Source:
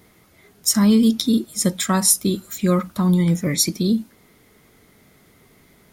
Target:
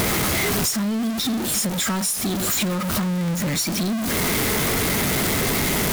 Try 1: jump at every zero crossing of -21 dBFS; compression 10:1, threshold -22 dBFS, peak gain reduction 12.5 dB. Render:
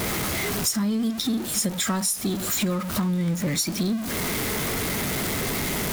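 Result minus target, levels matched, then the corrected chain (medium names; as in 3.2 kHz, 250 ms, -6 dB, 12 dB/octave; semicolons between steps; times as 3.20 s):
jump at every zero crossing: distortion -8 dB
jump at every zero crossing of -9.5 dBFS; compression 10:1, threshold -22 dBFS, peak gain reduction 14.5 dB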